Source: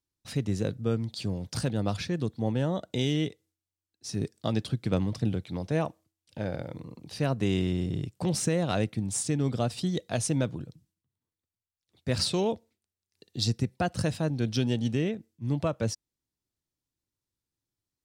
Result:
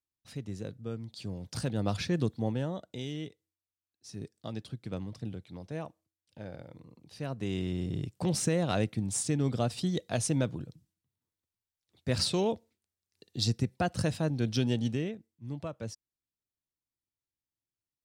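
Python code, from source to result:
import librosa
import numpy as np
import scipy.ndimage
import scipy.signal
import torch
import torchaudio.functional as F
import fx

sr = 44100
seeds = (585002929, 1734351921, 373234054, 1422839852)

y = fx.gain(x, sr, db=fx.line((0.97, -10.0), (2.2, 1.5), (2.97, -10.5), (7.11, -10.5), (8.09, -1.5), (14.82, -1.5), (15.29, -10.0)))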